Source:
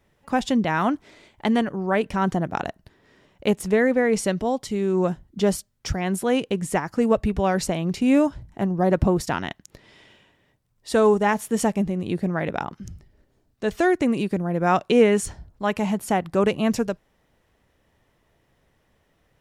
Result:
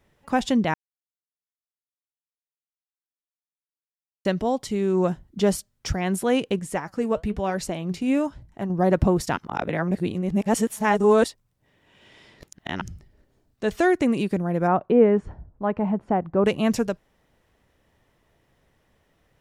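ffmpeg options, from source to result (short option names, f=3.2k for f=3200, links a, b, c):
-filter_complex "[0:a]asettb=1/sr,asplit=3[a][b][c];[a]atrim=end=6.594[d];[b]atrim=start=6.59:end=8.7,asetpts=PTS-STARTPTS,afade=t=in:d=0.004:c=qsin,afade=t=out:st=2.106:d=0.004:c=qsin,flanger=delay=1.4:depth=6.1:regen=77:speed=1:shape=triangular[e];[c]atrim=start=8.696[f];[d][e]acrossfade=d=0.004:c1=hsin:c2=qsin[g];[g][f]acrossfade=d=0.004:c1=qsin:c2=hsin,asplit=3[h][i][j];[h]afade=t=out:st=14.66:d=0.02[k];[i]lowpass=1.1k,afade=t=in:st=14.66:d=0.02,afade=t=out:st=16.44:d=0.02[l];[j]afade=t=in:st=16.44:d=0.02[m];[k][l][m]amix=inputs=3:normalize=0,asplit=5[n][o][p][q][r];[n]atrim=end=0.74,asetpts=PTS-STARTPTS,afade=t=out:st=0.736:d=0.004:c=hsin[s];[o]atrim=start=0.74:end=4.25,asetpts=PTS-STARTPTS,volume=0[t];[p]atrim=start=4.25:end=9.372,asetpts=PTS-STARTPTS,afade=t=in:d=0.004:c=hsin[u];[q]atrim=start=9.368:end=12.812,asetpts=PTS-STARTPTS,areverse[v];[r]atrim=start=12.808[w];[s][t][u]concat=n=3:v=0:a=1[x];[x][v]acrossfade=d=0.004:c1=hsin:c2=hsin[y];[y][w]acrossfade=d=0.004:c1=hsin:c2=hsin"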